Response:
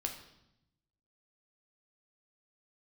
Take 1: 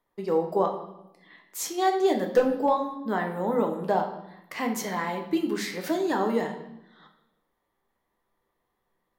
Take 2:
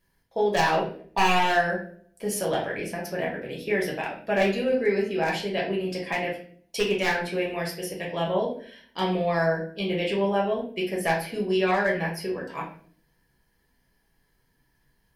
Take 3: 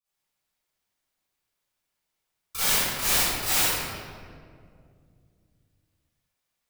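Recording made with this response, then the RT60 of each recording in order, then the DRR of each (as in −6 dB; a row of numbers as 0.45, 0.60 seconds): 1; 0.85, 0.50, 2.2 seconds; 3.0, −3.0, −16.5 decibels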